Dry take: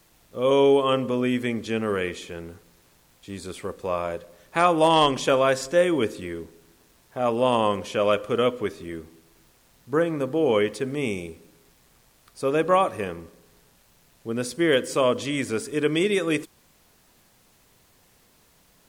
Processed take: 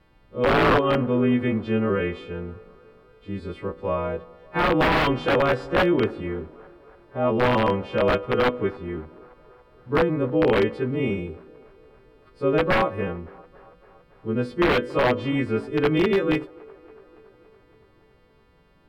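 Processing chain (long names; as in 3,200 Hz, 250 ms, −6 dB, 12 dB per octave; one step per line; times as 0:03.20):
every partial snapped to a pitch grid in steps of 2 semitones
spectral tilt −2 dB per octave
notch filter 690 Hz, Q 22
wrap-around overflow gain 11.5 dB
high-frequency loss of the air 420 metres
delay with a band-pass on its return 282 ms, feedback 67%, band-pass 740 Hz, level −22 dB
level +1.5 dB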